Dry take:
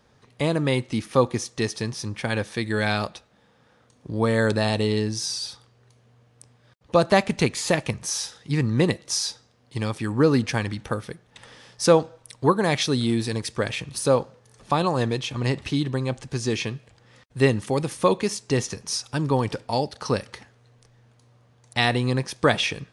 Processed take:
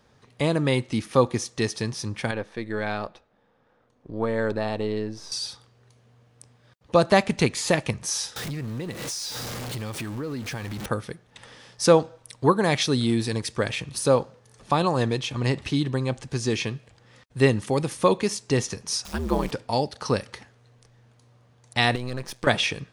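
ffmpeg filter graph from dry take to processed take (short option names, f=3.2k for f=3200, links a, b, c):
-filter_complex "[0:a]asettb=1/sr,asplit=3[a][b][c];[a]atrim=end=2.314[d];[b]atrim=start=2.31:end=5.32,asetpts=PTS-STARTPTS,afade=t=in:d=0.004:c=qsin,afade=t=out:st=3.006:d=0.004:c=qsin,aeval=exprs='if(lt(val(0),0),0.708*val(0),val(0))':c=same,lowpass=f=1.1k:p=1,equalizer=f=120:w=0.72:g=-8[e];[c]atrim=start=5.316[f];[d][e]acrossfade=d=0.004:c1=hsin:c2=qsin[g];[g][f]acrossfade=d=0.004:c1=qsin:c2=hsin,asettb=1/sr,asplit=3[h][i][j];[h]atrim=end=8.364[k];[i]atrim=start=8.36:end=10.86,asetpts=PTS-STARTPTS,afade=t=in:d=0.004:c=qsin,afade=t=out:st=2.496:d=0.004:c=qsin,aeval=exprs='val(0)+0.5*0.0422*sgn(val(0))':c=same,acompressor=threshold=-30dB:ratio=5:attack=3.2:release=140:knee=1:detection=peak[l];[j]atrim=start=10.856[m];[k][l]acrossfade=d=0.004:c1=hsin:c2=qsin[n];[n][m]acrossfade=d=0.004:c1=qsin:c2=hsin,asettb=1/sr,asplit=3[o][p][q];[o]atrim=end=19.054[r];[p]atrim=start=19.05:end=19.51,asetpts=PTS-STARTPTS,afade=t=in:d=0.004:c=qsin,afade=t=out:st=0.456:d=0.004:c=qsin,aeval=exprs='val(0)+0.5*0.0158*sgn(val(0))':c=same,acrusher=bits=8:dc=4:mix=0:aa=0.000001,aeval=exprs='val(0)*sin(2*PI*78*n/s)':c=same[s];[q]atrim=start=19.506[t];[r][s]acrossfade=d=0.004:c1=hsin:c2=qsin[u];[u][t]acrossfade=d=0.004:c1=qsin:c2=hsin,asettb=1/sr,asplit=3[v][w][x];[v]atrim=end=21.954[y];[w]atrim=start=21.95:end=22.47,asetpts=PTS-STARTPTS,afade=t=in:d=0.004:c=qsin,afade=t=out:st=0.516:d=0.004:c=qsin,aeval=exprs='if(lt(val(0),0),0.251*val(0),val(0))':c=same,acompressor=threshold=-25dB:ratio=6:attack=3.2:release=140:knee=1:detection=peak[z];[x]atrim=start=22.466[aa];[y][z]acrossfade=d=0.004:c1=hsin:c2=qsin[ab];[ab][aa]acrossfade=d=0.004:c1=qsin:c2=hsin"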